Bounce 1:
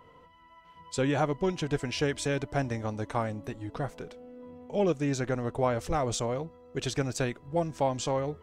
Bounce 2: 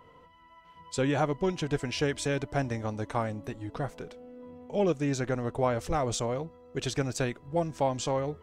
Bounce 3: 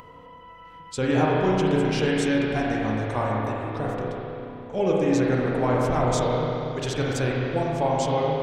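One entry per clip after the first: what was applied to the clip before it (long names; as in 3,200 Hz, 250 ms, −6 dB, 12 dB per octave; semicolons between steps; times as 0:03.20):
no processing that can be heard
spring reverb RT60 3 s, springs 32/46 ms, chirp 60 ms, DRR −4.5 dB; upward compression, threshold −41 dBFS; level +1 dB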